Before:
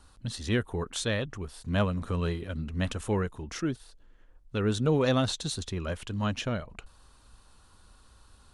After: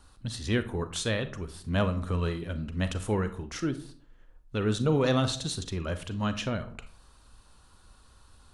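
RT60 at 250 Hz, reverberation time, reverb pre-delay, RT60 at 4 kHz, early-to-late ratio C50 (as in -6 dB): 0.55 s, 0.50 s, 34 ms, 0.25 s, 13.5 dB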